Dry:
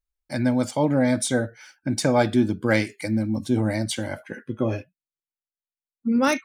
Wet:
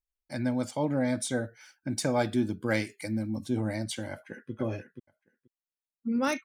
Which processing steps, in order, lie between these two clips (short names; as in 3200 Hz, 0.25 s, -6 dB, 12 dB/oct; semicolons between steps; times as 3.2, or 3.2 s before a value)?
1.44–3.46 high shelf 7300 Hz +5.5 dB; 4.11–4.51 echo throw 0.48 s, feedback 10%, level -7.5 dB; gain -7.5 dB